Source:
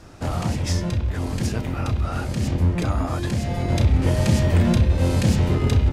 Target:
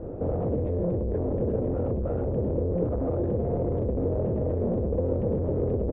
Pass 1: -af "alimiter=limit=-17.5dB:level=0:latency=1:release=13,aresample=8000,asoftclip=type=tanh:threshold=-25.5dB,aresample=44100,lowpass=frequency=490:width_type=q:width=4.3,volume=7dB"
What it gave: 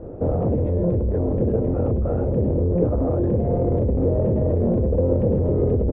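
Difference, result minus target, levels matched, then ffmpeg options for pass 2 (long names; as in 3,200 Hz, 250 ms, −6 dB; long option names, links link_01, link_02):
soft clipping: distortion −6 dB
-af "alimiter=limit=-17.5dB:level=0:latency=1:release=13,aresample=8000,asoftclip=type=tanh:threshold=-34.5dB,aresample=44100,lowpass=frequency=490:width_type=q:width=4.3,volume=7dB"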